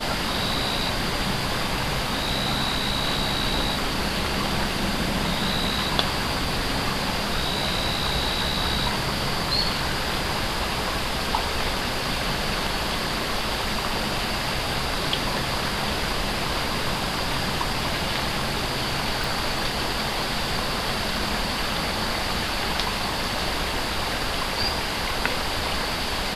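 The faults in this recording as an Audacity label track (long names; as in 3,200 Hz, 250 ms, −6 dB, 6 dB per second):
19.240000	19.240000	click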